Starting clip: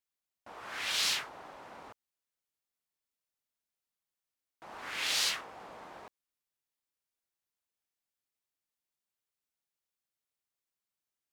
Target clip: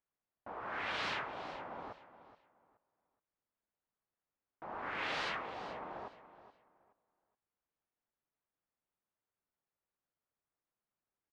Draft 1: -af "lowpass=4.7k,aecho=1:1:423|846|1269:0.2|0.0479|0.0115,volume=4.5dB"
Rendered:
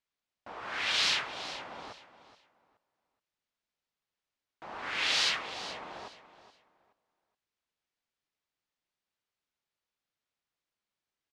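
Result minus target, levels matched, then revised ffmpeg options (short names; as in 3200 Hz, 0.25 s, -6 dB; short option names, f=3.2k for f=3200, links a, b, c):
1000 Hz band -9.0 dB
-af "lowpass=1.4k,aecho=1:1:423|846|1269:0.2|0.0479|0.0115,volume=4.5dB"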